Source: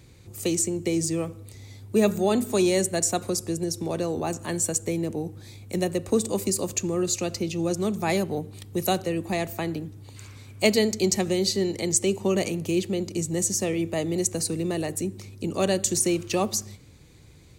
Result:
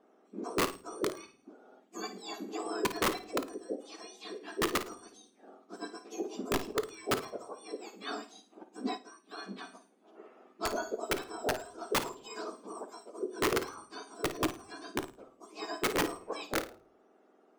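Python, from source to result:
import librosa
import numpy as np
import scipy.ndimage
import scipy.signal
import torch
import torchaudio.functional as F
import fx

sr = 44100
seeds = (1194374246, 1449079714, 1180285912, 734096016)

y = fx.octave_mirror(x, sr, pivot_hz=1700.0)
y = scipy.signal.sosfilt(scipy.signal.butter(2, 3000.0, 'lowpass', fs=sr, output='sos'), y)
y = fx.peak_eq(y, sr, hz=150.0, db=-10.5, octaves=1.0)
y = (np.mod(10.0 ** (15.5 / 20.0) * y + 1.0, 2.0) - 1.0) / 10.0 ** (15.5 / 20.0)
y = fx.room_flutter(y, sr, wall_m=9.3, rt60_s=0.29)
y = fx.room_shoebox(y, sr, seeds[0], volume_m3=210.0, walls='furnished', distance_m=0.34)
y = fx.upward_expand(y, sr, threshold_db=-49.0, expansion=1.5, at=(8.92, 9.43))
y = y * librosa.db_to_amplitude(-7.0)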